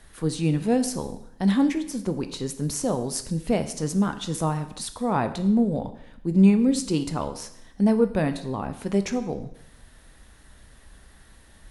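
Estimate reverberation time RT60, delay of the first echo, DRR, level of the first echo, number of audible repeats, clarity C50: 0.75 s, no echo audible, 8.5 dB, no echo audible, no echo audible, 12.5 dB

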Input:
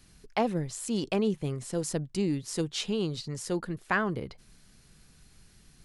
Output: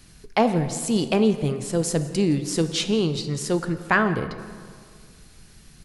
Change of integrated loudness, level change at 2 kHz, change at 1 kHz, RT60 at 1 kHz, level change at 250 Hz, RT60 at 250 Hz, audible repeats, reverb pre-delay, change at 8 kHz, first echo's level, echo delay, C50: +8.0 dB, +8.0 dB, +8.0 dB, 2.0 s, +8.0 dB, 2.3 s, 1, 9 ms, +8.0 dB, −20.5 dB, 169 ms, 10.5 dB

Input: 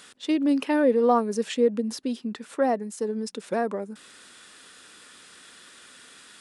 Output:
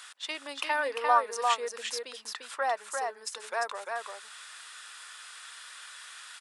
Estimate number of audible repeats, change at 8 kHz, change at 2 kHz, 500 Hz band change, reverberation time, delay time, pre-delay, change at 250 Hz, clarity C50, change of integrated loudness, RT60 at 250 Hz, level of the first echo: 1, +2.5 dB, +4.0 dB, −10.5 dB, no reverb audible, 347 ms, no reverb audible, −28.5 dB, no reverb audible, −6.0 dB, no reverb audible, −4.0 dB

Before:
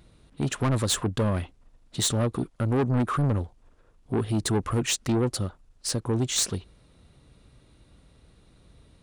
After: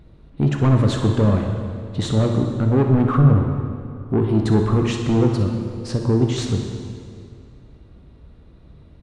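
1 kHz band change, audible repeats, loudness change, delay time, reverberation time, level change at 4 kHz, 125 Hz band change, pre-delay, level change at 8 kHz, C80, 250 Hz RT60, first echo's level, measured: +5.0 dB, 1, +7.5 dB, 62 ms, 2.4 s, −2.5 dB, +10.0 dB, 10 ms, −10.0 dB, 5.5 dB, 2.5 s, −11.5 dB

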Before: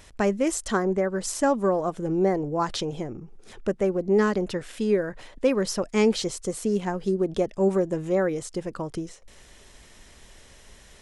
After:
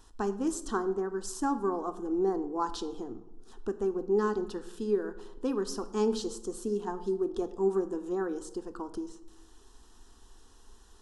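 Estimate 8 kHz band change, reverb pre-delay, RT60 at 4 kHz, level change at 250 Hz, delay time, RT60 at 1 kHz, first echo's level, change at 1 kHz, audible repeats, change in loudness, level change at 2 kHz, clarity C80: −9.0 dB, 3 ms, 0.55 s, −6.5 dB, no echo audible, 0.85 s, no echo audible, −5.0 dB, no echo audible, −7.0 dB, −12.0 dB, 16.5 dB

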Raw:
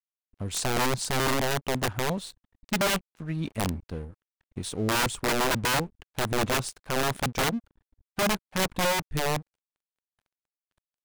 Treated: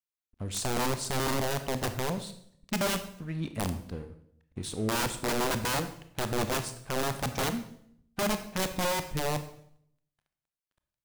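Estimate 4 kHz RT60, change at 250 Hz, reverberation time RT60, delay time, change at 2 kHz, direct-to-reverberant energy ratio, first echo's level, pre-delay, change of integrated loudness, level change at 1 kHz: 0.60 s, −2.5 dB, 0.65 s, no echo audible, −6.0 dB, 9.0 dB, no echo audible, 25 ms, −3.5 dB, −4.0 dB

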